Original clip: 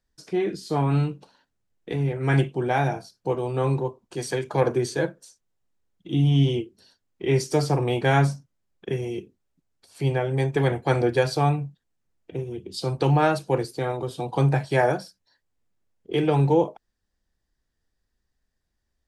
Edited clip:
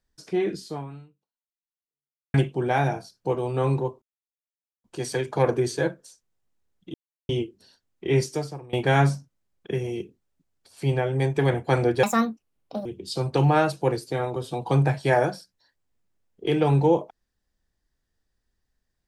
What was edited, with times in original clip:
0.6–2.34 fade out exponential
4.02 insert silence 0.82 s
6.12–6.47 mute
7.38–7.91 fade out quadratic, to -21.5 dB
11.21–12.52 speed 159%

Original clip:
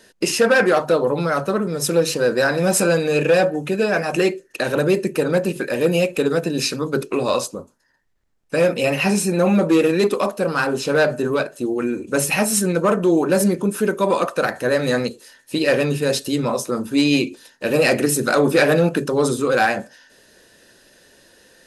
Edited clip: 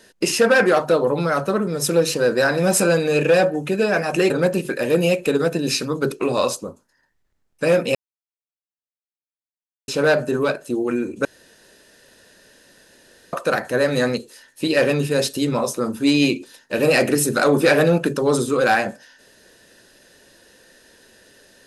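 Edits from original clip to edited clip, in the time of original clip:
4.3–5.21 cut
8.86–10.79 mute
12.16–14.24 room tone

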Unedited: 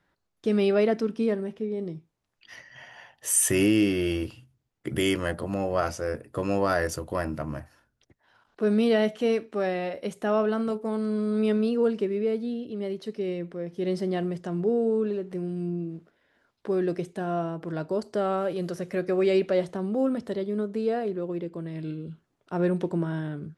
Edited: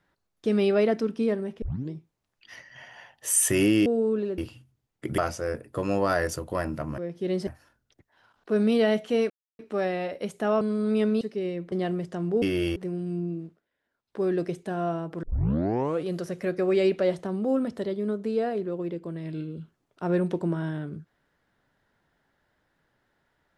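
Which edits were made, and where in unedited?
1.62 tape start 0.29 s
3.86–4.2 swap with 14.74–15.26
5–5.78 cut
9.41 insert silence 0.29 s
10.43–11.09 cut
11.69–13.04 cut
13.55–14.04 move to 7.58
15.9–16.73 dip -13 dB, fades 0.20 s
17.73 tape start 0.84 s

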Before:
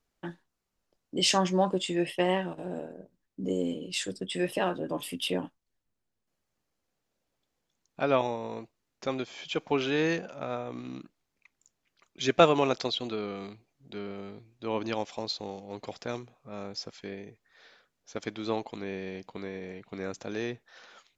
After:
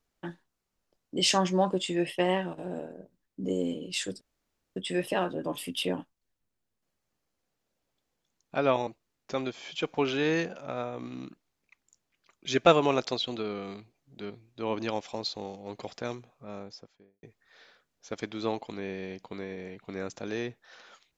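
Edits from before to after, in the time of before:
4.21 insert room tone 0.55 s
8.32–8.6 cut
14.03–14.34 cut
16.37–17.27 studio fade out

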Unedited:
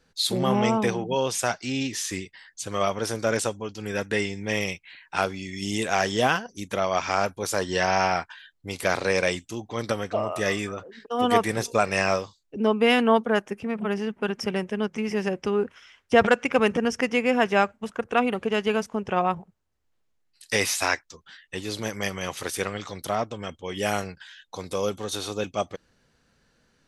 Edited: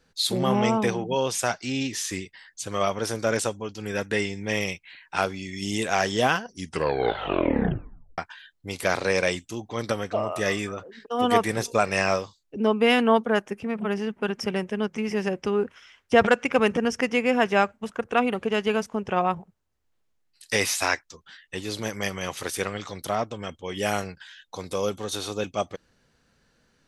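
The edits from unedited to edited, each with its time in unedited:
6.47 tape stop 1.71 s

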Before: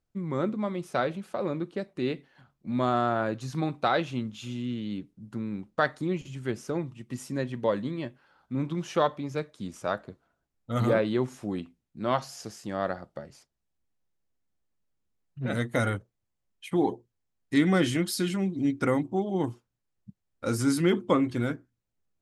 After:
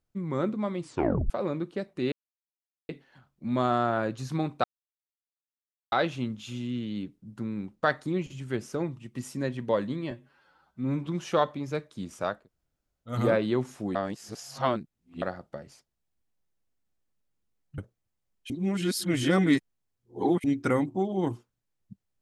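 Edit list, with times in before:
0.8 tape stop 0.50 s
2.12 insert silence 0.77 s
3.87 insert silence 1.28 s
8.06–8.7 stretch 1.5×
10–10.76 room tone, crossfade 0.24 s
11.58–12.85 reverse
15.41–15.95 cut
16.67–18.61 reverse

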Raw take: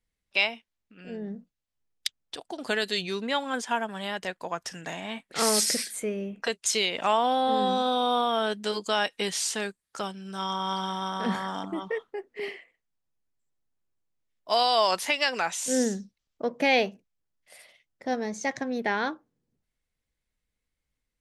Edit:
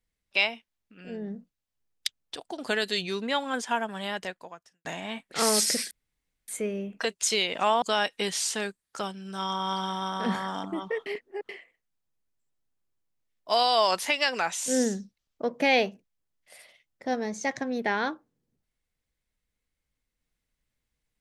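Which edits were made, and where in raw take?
4.2–4.85 fade out quadratic
5.91 insert room tone 0.57 s
7.25–8.82 cut
12.06–12.49 reverse

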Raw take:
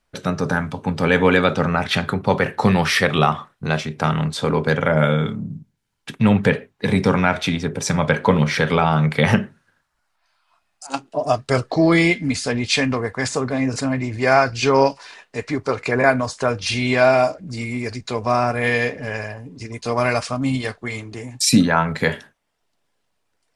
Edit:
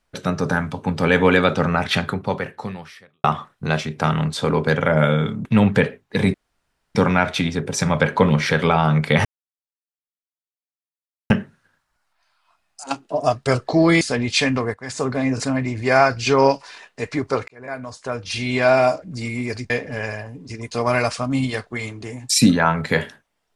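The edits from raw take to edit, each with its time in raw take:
1.98–3.24 fade out quadratic
5.45–6.14 cut
7.03 insert room tone 0.61 s
9.33 insert silence 2.05 s
12.04–12.37 cut
13.1–13.4 fade in quadratic, from -13.5 dB
15.84–17.21 fade in
18.06–18.81 cut

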